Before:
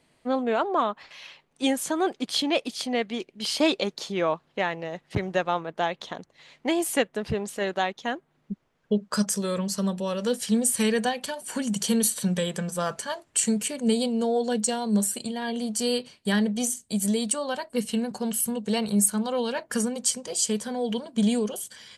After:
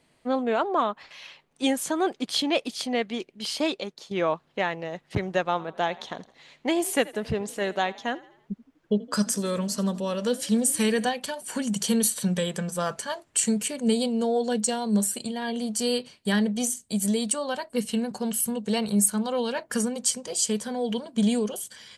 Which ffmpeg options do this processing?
ffmpeg -i in.wav -filter_complex "[0:a]asettb=1/sr,asplit=3[link_01][link_02][link_03];[link_01]atrim=end=5.514[link_04];[link_02]atrim=start=5.51:end=11.09,asetpts=PTS-STARTPTS,afade=type=in:duration=0.004:curve=qsin,afade=type=out:start_time=5.576:duration=0.004:curve=qsin,asplit=5[link_05][link_06][link_07][link_08][link_09];[link_06]adelay=82,afreqshift=34,volume=-20dB[link_10];[link_07]adelay=164,afreqshift=68,volume=-26.4dB[link_11];[link_08]adelay=246,afreqshift=102,volume=-32.8dB[link_12];[link_09]adelay=328,afreqshift=136,volume=-39.1dB[link_13];[link_05][link_10][link_11][link_12][link_13]amix=inputs=5:normalize=0,atrim=end_sample=246078[link_14];[link_03]atrim=start=11.086[link_15];[link_04][link_14]acrossfade=duration=0.004:curve1=hsin:curve2=qsin[link_16];[link_16][link_15]acrossfade=duration=0.004:curve1=qsin:curve2=hsin,asplit=2[link_17][link_18];[link_17]atrim=end=4.11,asetpts=PTS-STARTPTS,afade=type=out:start_time=3.16:duration=0.95:silence=0.266073[link_19];[link_18]atrim=start=4.11,asetpts=PTS-STARTPTS,afade=type=in:duration=0.004:curve=hsin:silence=0.266073[link_20];[link_19][link_20]concat=n=2:v=0:a=1" out.wav

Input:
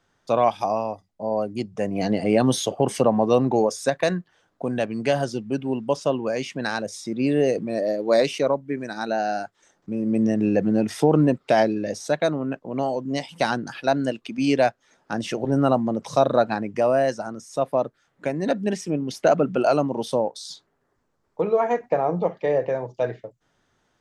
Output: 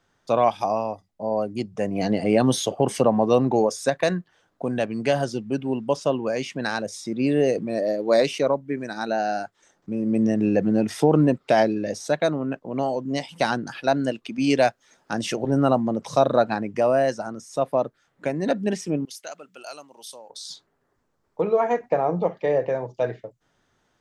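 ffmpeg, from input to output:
ffmpeg -i in.wav -filter_complex "[0:a]asettb=1/sr,asplit=3[link_01][link_02][link_03];[link_01]atrim=end=14.504[link_04];[link_02]atrim=start=14.5:end=15.36,asetpts=PTS-STARTPTS,afade=type=in:duration=0.004:curve=qsin,afade=type=out:start_time=0.856:duration=0.004:curve=qsin,highshelf=frequency=3600:gain=6.5[link_05];[link_03]atrim=start=15.356[link_06];[link_04][link_05]acrossfade=duration=0.004:curve1=hsin:curve2=qsin[link_07];[link_07][link_06]acrossfade=duration=0.004:curve1=qsin:curve2=hsin,asettb=1/sr,asplit=3[link_08][link_09][link_10];[link_08]atrim=end=19.054[link_11];[link_09]atrim=start=19.05:end=20.3,asetpts=PTS-STARTPTS,afade=type=in:duration=0.004:curve=qsin,afade=type=out:start_time=1.246:duration=0.004:curve=qsin,aderivative[link_12];[link_10]atrim=start=20.296[link_13];[link_11][link_12]acrossfade=duration=0.004:curve1=hsin:curve2=qsin[link_14];[link_14][link_13]acrossfade=duration=0.004:curve1=qsin:curve2=hsin" out.wav

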